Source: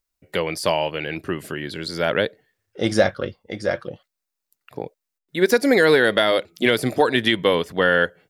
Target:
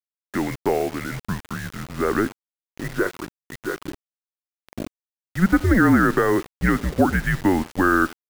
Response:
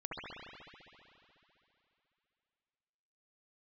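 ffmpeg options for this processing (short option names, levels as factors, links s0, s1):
-filter_complex "[0:a]highpass=f=200:t=q:w=0.5412,highpass=f=200:t=q:w=1.307,lowpass=f=2100:t=q:w=0.5176,lowpass=f=2100:t=q:w=0.7071,lowpass=f=2100:t=q:w=1.932,afreqshift=-190,asettb=1/sr,asplit=3[s0][s1][s2];[s0]atrim=end=2.814[s3];[s1]atrim=start=2.81:end=3.81,asetpts=PTS-STARTPTS,afade=t=in:d=0.004:c=qsin,afade=t=out:st=0.996:d=0.004:c=qsin,lowshelf=f=490:g=-9.5[s4];[s2]atrim=start=3.806[s5];[s3][s4]acrossfade=d=0.004:c1=hsin:c2=qsin[s6];[s6][s5]acrossfade=d=0.004:c1=qsin:c2=hsin,aecho=1:1:79|158:0.075|0.0217,acrusher=bits=5:mix=0:aa=0.000001"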